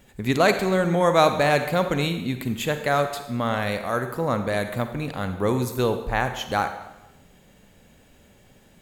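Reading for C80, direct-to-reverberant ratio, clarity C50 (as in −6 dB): 10.5 dB, 8.0 dB, 8.5 dB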